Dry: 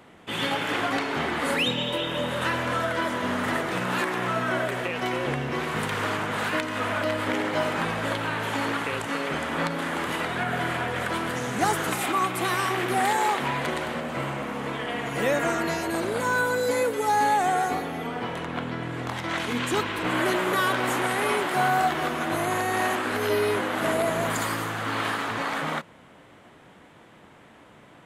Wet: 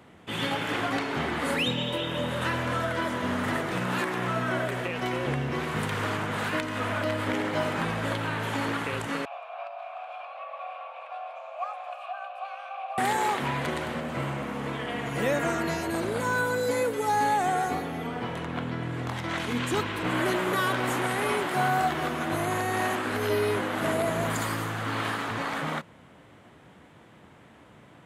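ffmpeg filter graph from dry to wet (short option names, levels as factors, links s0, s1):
-filter_complex "[0:a]asettb=1/sr,asplit=3[s0][s1][s2];[s0]atrim=end=9.254[s3];[s1]atrim=start=9.25:end=12.98,asetpts=PTS-STARTPTS,afade=t=in:d=0.004:c=qsin,afade=t=out:st=3.726:d=0.004:c=qsin,highshelf=f=7900:g=-7,afreqshift=410,asplit=3[s4][s5][s6];[s4]bandpass=f=730:t=q:w=8,volume=1[s7];[s5]bandpass=f=1090:t=q:w=8,volume=0.501[s8];[s6]bandpass=f=2440:t=q:w=8,volume=0.355[s9];[s7][s8][s9]amix=inputs=3:normalize=0[s10];[s2]atrim=start=12.976[s11];[s3][s10]acrossfade=d=0.004:c1=hsin:c2=qsin[s12];[s12][s11]acrossfade=d=0.004:c1=qsin:c2=hsin,highpass=61,lowshelf=f=140:g=9.5,volume=0.708"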